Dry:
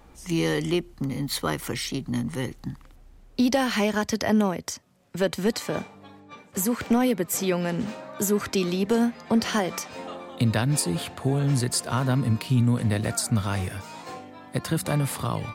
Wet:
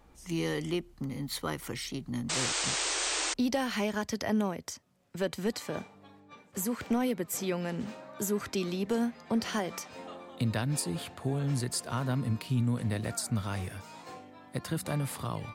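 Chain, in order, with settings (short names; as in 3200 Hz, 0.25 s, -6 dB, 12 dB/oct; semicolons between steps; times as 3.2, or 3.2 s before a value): painted sound noise, 2.29–3.34, 290–8900 Hz -24 dBFS; gain -7.5 dB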